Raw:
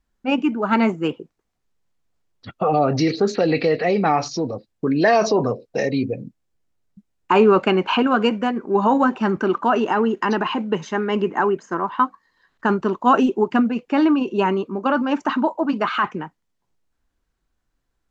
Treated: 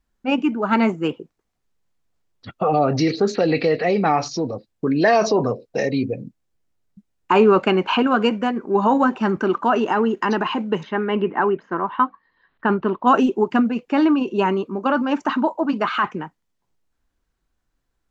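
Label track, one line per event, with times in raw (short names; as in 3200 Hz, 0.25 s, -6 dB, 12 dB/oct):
10.830000	13.070000	LPF 3500 Hz 24 dB/oct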